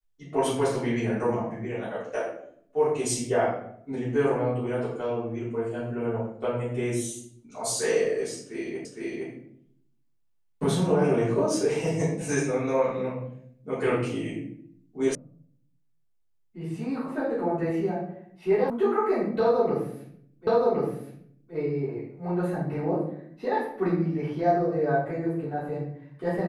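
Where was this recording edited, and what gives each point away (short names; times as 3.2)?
8.85 repeat of the last 0.46 s
15.15 sound cut off
18.7 sound cut off
20.47 repeat of the last 1.07 s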